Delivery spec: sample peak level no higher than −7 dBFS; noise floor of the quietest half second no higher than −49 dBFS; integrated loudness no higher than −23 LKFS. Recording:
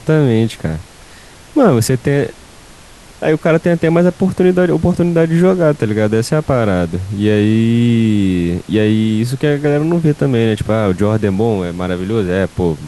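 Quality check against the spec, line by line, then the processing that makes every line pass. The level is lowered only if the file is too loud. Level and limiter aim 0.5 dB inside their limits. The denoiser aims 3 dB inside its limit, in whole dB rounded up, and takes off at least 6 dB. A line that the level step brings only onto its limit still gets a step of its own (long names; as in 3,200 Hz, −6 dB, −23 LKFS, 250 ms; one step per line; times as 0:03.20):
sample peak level −2.0 dBFS: out of spec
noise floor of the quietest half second −39 dBFS: out of spec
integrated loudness −14.0 LKFS: out of spec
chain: broadband denoise 6 dB, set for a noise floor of −39 dBFS
level −9.5 dB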